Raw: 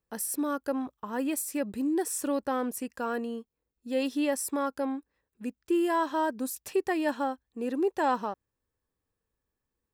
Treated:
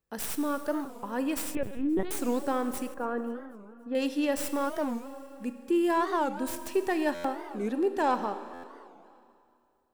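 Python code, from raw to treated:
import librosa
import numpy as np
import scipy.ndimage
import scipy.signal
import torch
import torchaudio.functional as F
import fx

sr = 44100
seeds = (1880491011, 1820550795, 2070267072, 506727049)

y = fx.tracing_dist(x, sr, depth_ms=0.082)
y = fx.rev_schroeder(y, sr, rt60_s=2.5, comb_ms=29, drr_db=9.5)
y = fx.lpc_vocoder(y, sr, seeds[0], excitation='pitch_kept', order=10, at=(1.55, 2.12))
y = fx.lowpass(y, sr, hz=1500.0, slope=12, at=(2.94, 3.95))
y = fx.echo_feedback(y, sr, ms=264, feedback_pct=58, wet_db=-24)
y = fx.buffer_glitch(y, sr, at_s=(7.14, 8.53), block=512, repeats=8)
y = fx.record_warp(y, sr, rpm=45.0, depth_cents=250.0)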